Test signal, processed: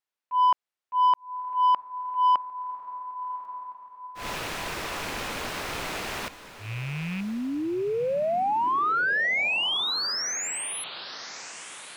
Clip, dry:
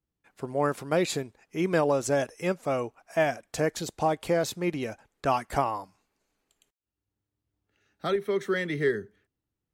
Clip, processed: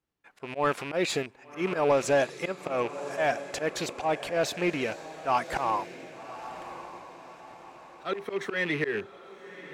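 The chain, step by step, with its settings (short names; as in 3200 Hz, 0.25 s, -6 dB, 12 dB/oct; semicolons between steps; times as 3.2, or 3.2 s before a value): rattling part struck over -40 dBFS, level -32 dBFS; auto swell 0.131 s; on a send: diffused feedback echo 1.135 s, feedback 45%, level -14 dB; on the sum: overdrive pedal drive 13 dB, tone 2500 Hz, clips at -13 dBFS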